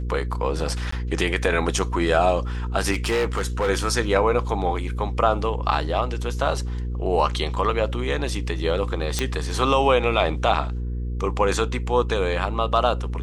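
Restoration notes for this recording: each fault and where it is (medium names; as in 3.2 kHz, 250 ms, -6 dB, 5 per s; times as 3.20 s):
hum 60 Hz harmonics 8 -27 dBFS
0.91–0.92 s: dropout 14 ms
2.91–3.70 s: clipped -18 dBFS
9.19 s: pop -7 dBFS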